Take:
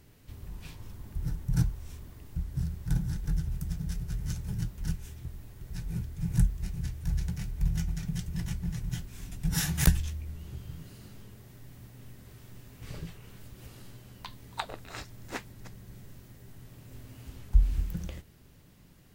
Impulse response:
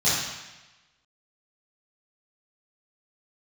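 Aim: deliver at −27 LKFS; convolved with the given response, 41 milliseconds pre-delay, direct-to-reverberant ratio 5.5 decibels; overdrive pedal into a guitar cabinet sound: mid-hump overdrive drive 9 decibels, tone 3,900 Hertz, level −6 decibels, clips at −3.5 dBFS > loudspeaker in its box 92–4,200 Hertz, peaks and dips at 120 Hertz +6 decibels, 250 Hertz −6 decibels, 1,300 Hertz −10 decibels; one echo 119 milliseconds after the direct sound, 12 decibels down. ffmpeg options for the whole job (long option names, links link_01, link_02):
-filter_complex "[0:a]aecho=1:1:119:0.251,asplit=2[link_01][link_02];[1:a]atrim=start_sample=2205,adelay=41[link_03];[link_02][link_03]afir=irnorm=-1:irlink=0,volume=-21dB[link_04];[link_01][link_04]amix=inputs=2:normalize=0,asplit=2[link_05][link_06];[link_06]highpass=frequency=720:poles=1,volume=9dB,asoftclip=type=tanh:threshold=-3.5dB[link_07];[link_05][link_07]amix=inputs=2:normalize=0,lowpass=frequency=3900:poles=1,volume=-6dB,highpass=92,equalizer=frequency=120:width_type=q:width=4:gain=6,equalizer=frequency=250:width_type=q:width=4:gain=-6,equalizer=frequency=1300:width_type=q:width=4:gain=-10,lowpass=frequency=4200:width=0.5412,lowpass=frequency=4200:width=1.3066,volume=9.5dB"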